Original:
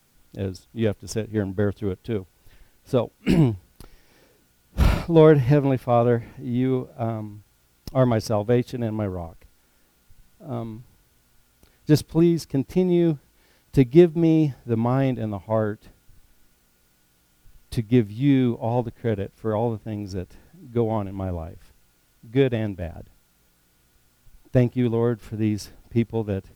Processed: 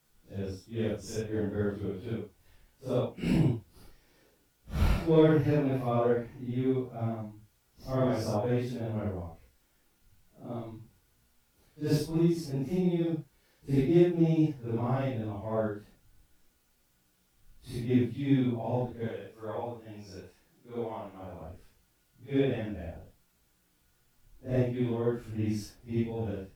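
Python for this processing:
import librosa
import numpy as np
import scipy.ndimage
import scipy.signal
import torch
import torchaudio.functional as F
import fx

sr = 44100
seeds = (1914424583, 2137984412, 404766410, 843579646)

y = fx.phase_scramble(x, sr, seeds[0], window_ms=200)
y = fx.low_shelf(y, sr, hz=390.0, db=-12.0, at=(19.08, 21.41))
y = F.gain(torch.from_numpy(y), -7.5).numpy()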